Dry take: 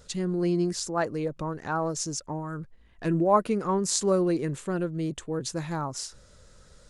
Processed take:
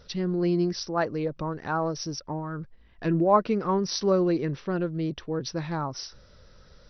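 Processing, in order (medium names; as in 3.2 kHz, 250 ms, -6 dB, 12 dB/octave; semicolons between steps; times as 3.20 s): brick-wall FIR low-pass 6 kHz; trim +1 dB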